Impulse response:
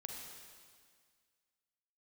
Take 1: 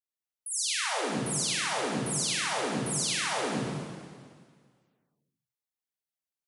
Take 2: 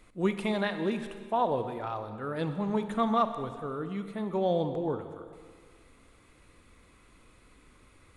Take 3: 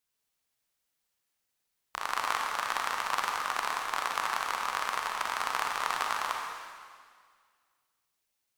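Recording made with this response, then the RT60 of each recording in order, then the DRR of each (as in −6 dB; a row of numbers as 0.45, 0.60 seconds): 3; 1.9, 1.9, 1.9 seconds; −9.5, 9.0, 0.5 decibels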